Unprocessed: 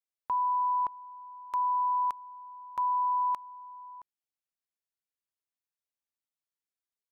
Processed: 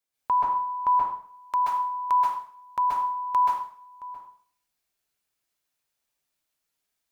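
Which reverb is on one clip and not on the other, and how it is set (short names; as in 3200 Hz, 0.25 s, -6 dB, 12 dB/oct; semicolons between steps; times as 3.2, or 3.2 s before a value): plate-style reverb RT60 0.54 s, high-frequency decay 0.95×, pre-delay 0.12 s, DRR -5.5 dB; gain +6.5 dB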